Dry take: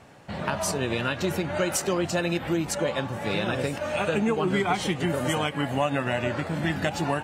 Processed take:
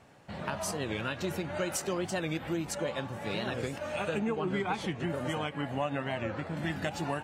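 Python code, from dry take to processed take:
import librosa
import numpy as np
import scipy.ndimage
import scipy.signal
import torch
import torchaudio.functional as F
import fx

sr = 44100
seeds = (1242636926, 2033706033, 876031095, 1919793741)

y = fx.lowpass(x, sr, hz=3700.0, slope=6, at=(4.19, 6.57))
y = fx.record_warp(y, sr, rpm=45.0, depth_cents=160.0)
y = y * librosa.db_to_amplitude(-7.0)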